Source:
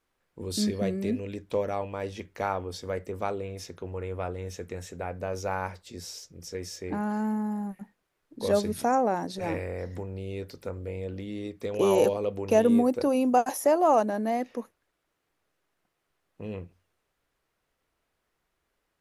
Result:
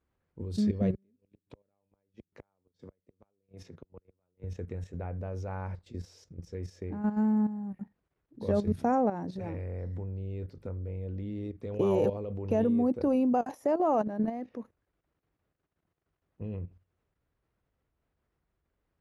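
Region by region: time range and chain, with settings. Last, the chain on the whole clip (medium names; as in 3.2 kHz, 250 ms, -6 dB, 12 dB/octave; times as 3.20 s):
0.94–4.44 s: high-pass 120 Hz 24 dB/octave + band-stop 720 Hz, Q 24 + inverted gate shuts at -26 dBFS, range -41 dB
whole clip: high-pass 58 Hz 12 dB/octave; RIAA curve playback; level held to a coarse grid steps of 11 dB; trim -3 dB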